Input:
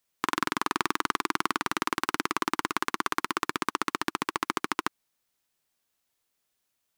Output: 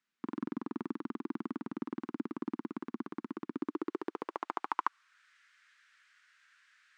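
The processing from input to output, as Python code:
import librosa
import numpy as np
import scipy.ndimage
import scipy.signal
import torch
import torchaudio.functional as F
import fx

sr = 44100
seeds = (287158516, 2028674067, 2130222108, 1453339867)

y = fx.dmg_noise_band(x, sr, seeds[0], low_hz=1300.0, high_hz=8700.0, level_db=-59.0)
y = fx.filter_sweep_bandpass(y, sr, from_hz=230.0, to_hz=1600.0, start_s=3.47, end_s=5.28, q=2.9)
y = y * 10.0 ** (2.5 / 20.0)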